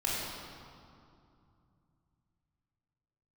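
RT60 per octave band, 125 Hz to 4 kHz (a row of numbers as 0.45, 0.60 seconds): 4.2, 3.4, 2.5, 2.6, 1.8, 1.6 seconds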